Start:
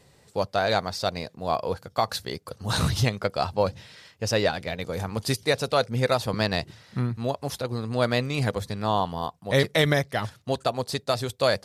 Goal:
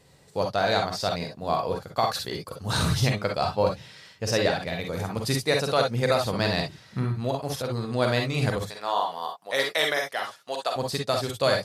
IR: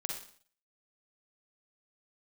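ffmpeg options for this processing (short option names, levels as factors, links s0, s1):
-filter_complex "[0:a]asettb=1/sr,asplit=3[s0][s1][s2];[s0]atrim=end=8.694[s3];[s1]atrim=start=8.69:end=10.76,asetpts=PTS-STARTPTS,afade=t=in:d=0.004:c=qsin,afade=t=out:st=2.066:d=0.004:c=qsin,highpass=600[s4];[s2]atrim=start=10.756[s5];[s3][s4]acrossfade=d=0.004:c1=hsin:c2=qsin[s6];[s6][s5]acrossfade=d=0.004:c1=qsin:c2=hsin[s7];[1:a]atrim=start_sample=2205,atrim=end_sample=3087[s8];[s7][s8]afir=irnorm=-1:irlink=0"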